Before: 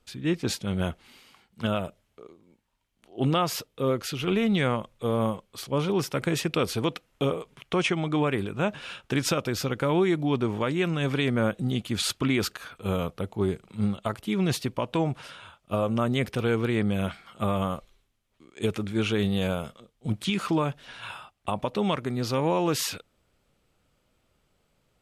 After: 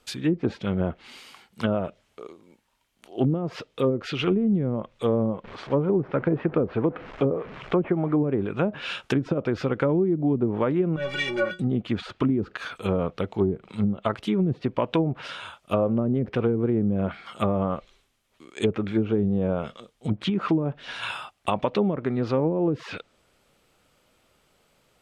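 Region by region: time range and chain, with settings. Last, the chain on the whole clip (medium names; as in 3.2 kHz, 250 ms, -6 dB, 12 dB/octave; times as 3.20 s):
5.44–8.24 s: one-bit delta coder 64 kbps, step -37.5 dBFS + low-pass 1.8 kHz
10.96–11.60 s: treble shelf 3.6 kHz +8 dB + waveshaping leveller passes 3 + inharmonic resonator 170 Hz, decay 0.38 s, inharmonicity 0.03
whole clip: dynamic bell 900 Hz, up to -4 dB, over -42 dBFS, Q 0.89; low-pass that closes with the level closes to 310 Hz, closed at -21 dBFS; bass shelf 210 Hz -10 dB; trim +8.5 dB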